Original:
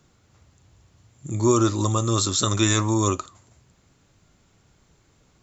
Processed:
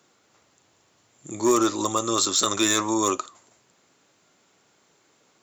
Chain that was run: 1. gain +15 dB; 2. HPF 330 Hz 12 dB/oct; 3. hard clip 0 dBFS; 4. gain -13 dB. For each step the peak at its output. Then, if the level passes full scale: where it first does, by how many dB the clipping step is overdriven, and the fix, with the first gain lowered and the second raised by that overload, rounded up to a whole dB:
+9.5, +8.0, 0.0, -13.0 dBFS; step 1, 8.0 dB; step 1 +7 dB, step 4 -5 dB

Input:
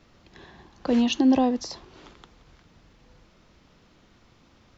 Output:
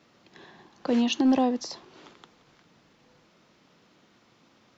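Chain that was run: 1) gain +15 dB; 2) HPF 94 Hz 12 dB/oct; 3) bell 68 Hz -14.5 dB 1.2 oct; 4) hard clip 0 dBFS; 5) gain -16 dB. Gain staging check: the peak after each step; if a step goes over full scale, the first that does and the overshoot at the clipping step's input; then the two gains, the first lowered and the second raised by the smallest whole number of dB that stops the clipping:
+4.5, +4.0, +3.5, 0.0, -16.0 dBFS; step 1, 3.5 dB; step 1 +11 dB, step 5 -12 dB

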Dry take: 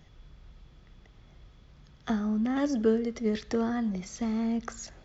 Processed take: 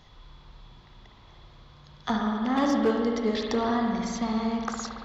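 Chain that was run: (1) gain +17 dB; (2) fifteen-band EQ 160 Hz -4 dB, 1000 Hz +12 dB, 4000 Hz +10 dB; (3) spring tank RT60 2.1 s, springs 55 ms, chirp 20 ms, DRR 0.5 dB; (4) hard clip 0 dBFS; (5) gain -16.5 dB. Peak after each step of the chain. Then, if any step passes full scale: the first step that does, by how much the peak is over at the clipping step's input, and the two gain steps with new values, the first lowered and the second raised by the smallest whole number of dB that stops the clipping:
+3.5, +3.5, +4.5, 0.0, -16.5 dBFS; step 1, 4.5 dB; step 1 +12 dB, step 5 -11.5 dB

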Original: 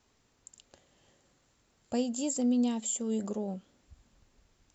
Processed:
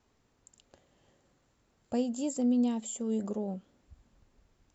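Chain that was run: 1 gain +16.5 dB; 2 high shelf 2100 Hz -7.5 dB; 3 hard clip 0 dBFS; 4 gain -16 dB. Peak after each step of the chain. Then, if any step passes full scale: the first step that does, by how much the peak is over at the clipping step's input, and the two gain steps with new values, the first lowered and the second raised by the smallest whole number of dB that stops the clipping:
-3.5, -4.0, -4.0, -20.0 dBFS; no overload

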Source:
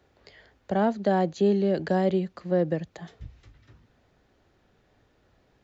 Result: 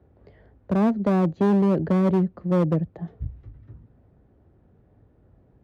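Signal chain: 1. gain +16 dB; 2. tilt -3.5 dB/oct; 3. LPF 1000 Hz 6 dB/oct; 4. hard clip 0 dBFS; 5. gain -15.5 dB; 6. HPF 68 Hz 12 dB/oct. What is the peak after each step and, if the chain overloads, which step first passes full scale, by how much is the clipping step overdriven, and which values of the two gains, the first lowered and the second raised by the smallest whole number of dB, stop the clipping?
+4.0, +9.5, +8.5, 0.0, -15.5, -12.0 dBFS; step 1, 8.5 dB; step 1 +7 dB, step 5 -6.5 dB

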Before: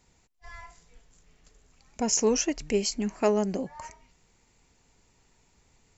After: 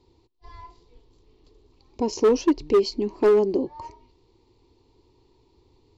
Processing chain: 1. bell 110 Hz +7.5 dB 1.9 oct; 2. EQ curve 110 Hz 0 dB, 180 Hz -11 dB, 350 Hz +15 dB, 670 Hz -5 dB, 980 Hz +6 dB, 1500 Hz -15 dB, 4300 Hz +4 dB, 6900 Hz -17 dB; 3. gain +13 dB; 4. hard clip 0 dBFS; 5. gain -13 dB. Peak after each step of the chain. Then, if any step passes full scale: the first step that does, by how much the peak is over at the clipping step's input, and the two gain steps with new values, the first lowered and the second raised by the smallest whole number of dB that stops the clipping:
-10.5, -4.5, +8.5, 0.0, -13.0 dBFS; step 3, 8.5 dB; step 3 +4 dB, step 5 -4 dB

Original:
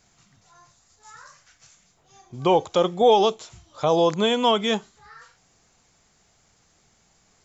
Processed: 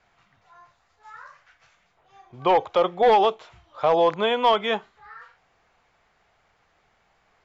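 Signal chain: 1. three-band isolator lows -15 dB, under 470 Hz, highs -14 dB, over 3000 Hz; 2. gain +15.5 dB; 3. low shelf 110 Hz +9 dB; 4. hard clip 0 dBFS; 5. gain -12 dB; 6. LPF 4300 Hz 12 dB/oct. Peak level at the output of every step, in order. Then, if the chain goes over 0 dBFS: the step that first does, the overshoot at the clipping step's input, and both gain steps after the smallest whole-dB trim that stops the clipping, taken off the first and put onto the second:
-9.5, +6.0, +6.0, 0.0, -12.0, -11.5 dBFS; step 2, 6.0 dB; step 2 +9.5 dB, step 5 -6 dB

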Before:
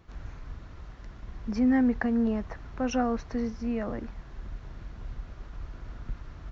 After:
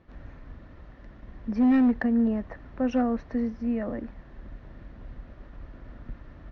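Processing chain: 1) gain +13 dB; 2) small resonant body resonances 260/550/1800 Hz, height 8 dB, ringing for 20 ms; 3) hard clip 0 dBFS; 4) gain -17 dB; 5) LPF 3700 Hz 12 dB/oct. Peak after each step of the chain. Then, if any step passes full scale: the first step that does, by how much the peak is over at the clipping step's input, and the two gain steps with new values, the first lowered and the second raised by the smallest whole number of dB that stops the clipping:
-1.0, +5.0, 0.0, -17.0, -16.5 dBFS; step 2, 5.0 dB; step 1 +8 dB, step 4 -12 dB

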